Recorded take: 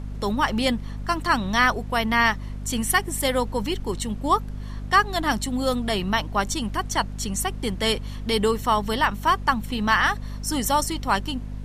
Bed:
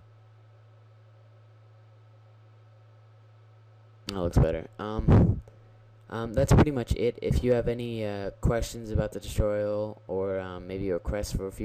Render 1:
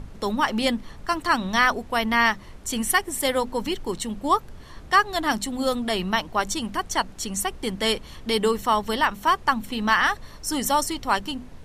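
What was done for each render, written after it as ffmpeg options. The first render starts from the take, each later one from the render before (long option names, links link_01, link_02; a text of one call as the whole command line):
ffmpeg -i in.wav -af "bandreject=frequency=50:width_type=h:width=6,bandreject=frequency=100:width_type=h:width=6,bandreject=frequency=150:width_type=h:width=6,bandreject=frequency=200:width_type=h:width=6,bandreject=frequency=250:width_type=h:width=6" out.wav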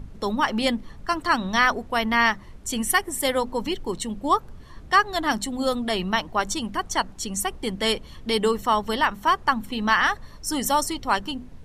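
ffmpeg -i in.wav -af "afftdn=noise_reduction=6:noise_floor=-43" out.wav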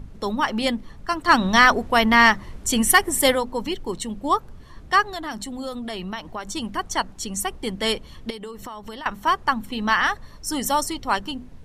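ffmpeg -i in.wav -filter_complex "[0:a]asplit=3[link_01][link_02][link_03];[link_01]afade=type=out:start_time=1.27:duration=0.02[link_04];[link_02]acontrast=61,afade=type=in:start_time=1.27:duration=0.02,afade=type=out:start_time=3.34:duration=0.02[link_05];[link_03]afade=type=in:start_time=3.34:duration=0.02[link_06];[link_04][link_05][link_06]amix=inputs=3:normalize=0,asettb=1/sr,asplit=3[link_07][link_08][link_09];[link_07]atrim=end=5.084[link_10];[link_08]atrim=start=5.08:end=6.55,asetpts=PTS-STARTPTS,afade=type=in:duration=0.004:curve=qsin,afade=type=out:start_time=1.466:duration=0.004:curve=qsin,acompressor=threshold=-29dB:ratio=3:attack=3.2:release=140:knee=1:detection=peak[link_11];[link_09]atrim=start=6.546[link_12];[link_10][link_11]acrossfade=duration=0.004:curve1=hsin:curve2=qsin[link_13];[link_13][link_12]acrossfade=duration=0.004:curve1=qsin:curve2=hsin,asettb=1/sr,asplit=3[link_14][link_15][link_16];[link_14]atrim=end=8.304[link_17];[link_15]atrim=start=8.3:end=9.06,asetpts=PTS-STARTPTS,afade=type=in:duration=0.004:curve=qsin,afade=type=out:start_time=0.756:duration=0.004:curve=qsin,acompressor=threshold=-32dB:ratio=10:attack=3.2:release=140:knee=1:detection=peak[link_18];[link_16]atrim=start=9.056[link_19];[link_17][link_18]acrossfade=duration=0.004:curve1=hsin:curve2=qsin[link_20];[link_20][link_19]acrossfade=duration=0.004:curve1=qsin:curve2=hsin" out.wav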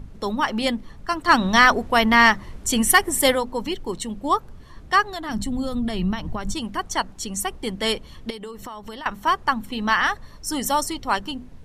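ffmpeg -i in.wav -filter_complex "[0:a]asettb=1/sr,asplit=3[link_01][link_02][link_03];[link_01]atrim=end=5.294[link_04];[link_02]atrim=start=5.29:end=6.54,asetpts=PTS-STARTPTS,afade=type=in:duration=0.004:curve=qsin,afade=type=out:start_time=1.246:duration=0.004:curve=qsin,bass=frequency=250:gain=14,treble=frequency=4000:gain=0[link_05];[link_03]atrim=start=6.536[link_06];[link_04][link_05]acrossfade=duration=0.004:curve1=hsin:curve2=qsin[link_07];[link_07][link_06]acrossfade=duration=0.004:curve1=qsin:curve2=hsin" out.wav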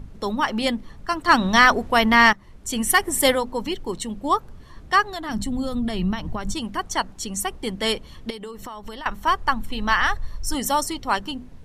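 ffmpeg -i in.wav -filter_complex "[0:a]asettb=1/sr,asplit=3[link_01][link_02][link_03];[link_01]atrim=end=8.544[link_04];[link_02]atrim=start=8.54:end=10.55,asetpts=PTS-STARTPTS,afade=type=in:duration=0.004:curve=qsin,afade=type=out:start_time=2.006:duration=0.004:curve=qsin,asubboost=boost=9.5:cutoff=85[link_05];[link_03]atrim=start=10.546[link_06];[link_04][link_05]acrossfade=duration=0.004:curve1=hsin:curve2=qsin[link_07];[link_07][link_06]acrossfade=duration=0.004:curve1=qsin:curve2=hsin,asplit=2[link_08][link_09];[link_08]atrim=end=2.33,asetpts=PTS-STARTPTS,afade=type=out:start_time=2.326:duration=0.004:curve=hsin:silence=0.177828[link_10];[link_09]atrim=start=2.33,asetpts=PTS-STARTPTS,afade=type=in:duration=0.88:silence=0.177828[link_11];[link_10][link_11]concat=n=2:v=0:a=1" out.wav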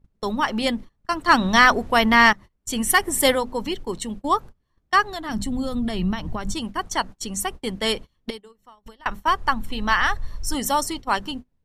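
ffmpeg -i in.wav -af "agate=range=-28dB:threshold=-32dB:ratio=16:detection=peak" out.wav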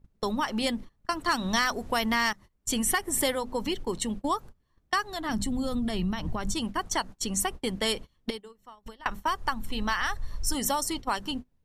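ffmpeg -i in.wav -filter_complex "[0:a]acrossover=split=5000[link_01][link_02];[link_01]acompressor=threshold=-26dB:ratio=4[link_03];[link_02]alimiter=limit=-17.5dB:level=0:latency=1:release=381[link_04];[link_03][link_04]amix=inputs=2:normalize=0" out.wav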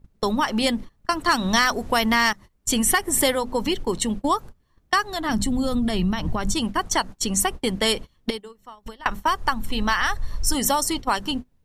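ffmpeg -i in.wav -af "volume=6.5dB" out.wav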